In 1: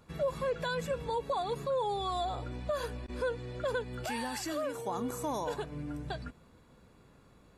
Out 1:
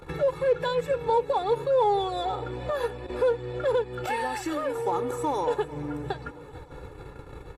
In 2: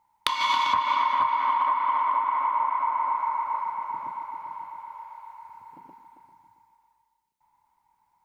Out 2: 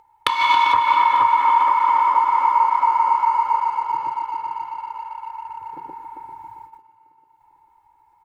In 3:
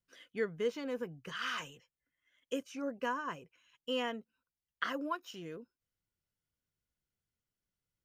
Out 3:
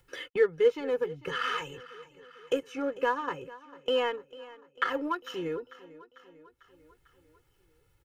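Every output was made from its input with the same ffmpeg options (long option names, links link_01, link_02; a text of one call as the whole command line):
ffmpeg -i in.wav -filter_complex "[0:a]aecho=1:1:2.3:0.91,agate=range=-37dB:threshold=-56dB:ratio=16:detection=peak,acrossover=split=110[link_01][link_02];[link_01]acompressor=threshold=-57dB:ratio=6[link_03];[link_03][link_02]amix=inputs=2:normalize=0,equalizer=frequency=5400:width=0.77:gain=-9,asplit=2[link_04][link_05];[link_05]aeval=exprs='sgn(val(0))*max(abs(val(0))-0.0112,0)':channel_layout=same,volume=-8dB[link_06];[link_04][link_06]amix=inputs=2:normalize=0,acompressor=mode=upward:threshold=-30dB:ratio=2.5,highshelf=frequency=11000:gain=-11,aecho=1:1:447|894|1341|1788|2235:0.112|0.0662|0.0391|0.023|0.0136,volume=3.5dB" out.wav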